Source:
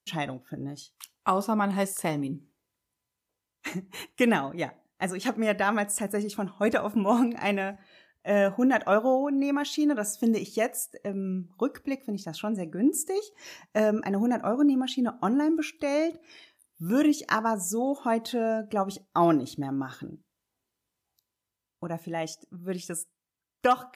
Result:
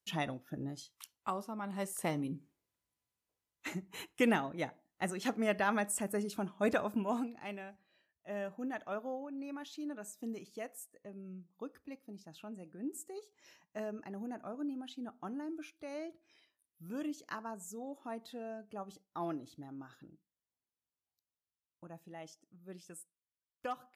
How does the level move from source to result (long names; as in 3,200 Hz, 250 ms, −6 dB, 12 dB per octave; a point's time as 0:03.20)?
0:00.92 −5 dB
0:01.55 −17 dB
0:02.03 −6.5 dB
0:06.86 −6.5 dB
0:07.37 −17 dB